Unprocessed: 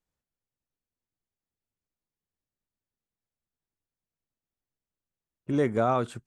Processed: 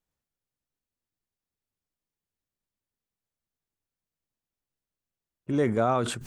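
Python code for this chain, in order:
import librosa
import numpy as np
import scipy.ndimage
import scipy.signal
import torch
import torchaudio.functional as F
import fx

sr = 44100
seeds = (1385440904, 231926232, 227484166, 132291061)

y = fx.sustainer(x, sr, db_per_s=63.0)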